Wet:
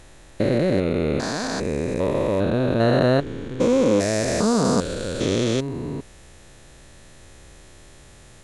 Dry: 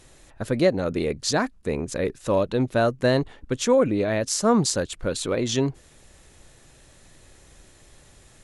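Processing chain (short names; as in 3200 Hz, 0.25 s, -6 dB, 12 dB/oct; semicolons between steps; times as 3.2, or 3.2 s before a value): stepped spectrum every 0.4 s; high shelf 6400 Hz -4.5 dB; gain +7 dB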